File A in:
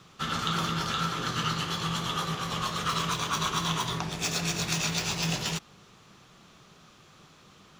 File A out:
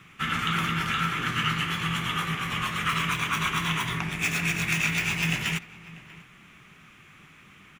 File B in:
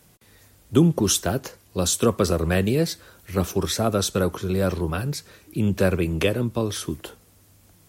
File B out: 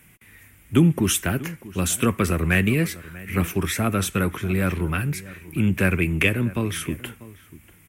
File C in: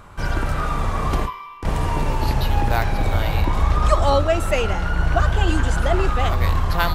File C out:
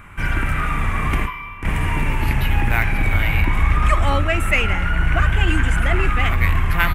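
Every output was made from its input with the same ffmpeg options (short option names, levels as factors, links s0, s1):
-filter_complex "[0:a]firequalizer=gain_entry='entry(270,0);entry(510,-9);entry(2200,11);entry(4200,-12);entry(9200,1)':delay=0.05:min_phase=1,asplit=2[s0][s1];[s1]asoftclip=type=tanh:threshold=0.141,volume=0.282[s2];[s0][s2]amix=inputs=2:normalize=0,asplit=2[s3][s4];[s4]adelay=641.4,volume=0.126,highshelf=f=4000:g=-14.4[s5];[s3][s5]amix=inputs=2:normalize=0"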